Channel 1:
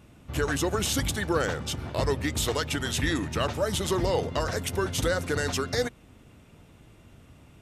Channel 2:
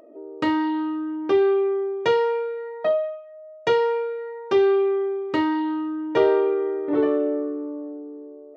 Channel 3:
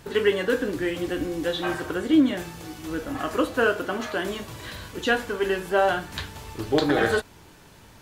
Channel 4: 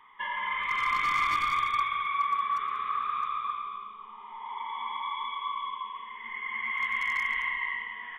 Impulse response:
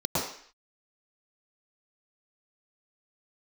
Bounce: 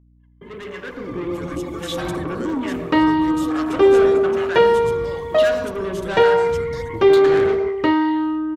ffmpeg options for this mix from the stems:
-filter_complex "[0:a]adelay=1000,volume=-19.5dB[link_01];[1:a]acrossover=split=4300[link_02][link_03];[link_03]acompressor=threshold=-54dB:ratio=4:attack=1:release=60[link_04];[link_02][link_04]amix=inputs=2:normalize=0,adelay=2500,volume=-3.5dB[link_05];[2:a]afwtdn=0.0224,acrossover=split=920[link_06][link_07];[link_06]aeval=exprs='val(0)*(1-0.7/2+0.7/2*cos(2*PI*1.1*n/s))':channel_layout=same[link_08];[link_07]aeval=exprs='val(0)*(1-0.7/2-0.7/2*cos(2*PI*1.1*n/s))':channel_layout=same[link_09];[link_08][link_09]amix=inputs=2:normalize=0,asoftclip=type=tanh:threshold=-28.5dB,adelay=350,volume=-3dB,asplit=2[link_10][link_11];[link_11]volume=-17dB[link_12];[3:a]aphaser=in_gain=1:out_gain=1:delay=2.6:decay=0.73:speed=1.3:type=sinusoidal,acompressor=threshold=-38dB:ratio=2.5,volume=-14.5dB[link_13];[4:a]atrim=start_sample=2205[link_14];[link_12][link_14]afir=irnorm=-1:irlink=0[link_15];[link_01][link_05][link_10][link_13][link_15]amix=inputs=5:normalize=0,agate=range=-34dB:threshold=-46dB:ratio=16:detection=peak,dynaudnorm=framelen=470:gausssize=5:maxgain=10dB,aeval=exprs='val(0)+0.00251*(sin(2*PI*60*n/s)+sin(2*PI*2*60*n/s)/2+sin(2*PI*3*60*n/s)/3+sin(2*PI*4*60*n/s)/4+sin(2*PI*5*60*n/s)/5)':channel_layout=same"

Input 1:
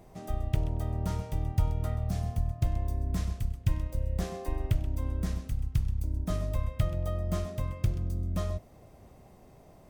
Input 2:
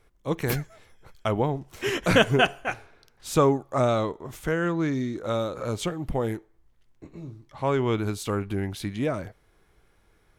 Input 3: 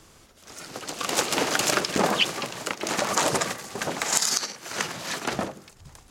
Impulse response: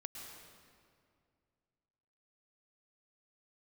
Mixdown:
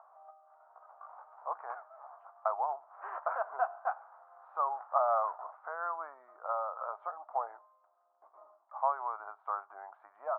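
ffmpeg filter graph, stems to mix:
-filter_complex "[0:a]volume=-16dB[link_01];[1:a]alimiter=limit=-16dB:level=0:latency=1:release=128,adelay=1200,volume=2dB[link_02];[2:a]flanger=delay=15.5:depth=2.3:speed=2.4,volume=-1.5dB,afade=type=out:start_time=0.91:duration=0.37:silence=0.375837,afade=type=in:start_time=4.46:duration=0.63:silence=0.237137[link_03];[link_01][link_02][link_03]amix=inputs=3:normalize=0,acompressor=mode=upward:threshold=-37dB:ratio=2.5,asuperpass=centerf=940:order=8:qfactor=1.4"

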